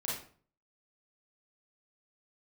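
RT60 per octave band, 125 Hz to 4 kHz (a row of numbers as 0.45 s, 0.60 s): 0.65 s, 0.55 s, 0.50 s, 0.45 s, 0.40 s, 0.35 s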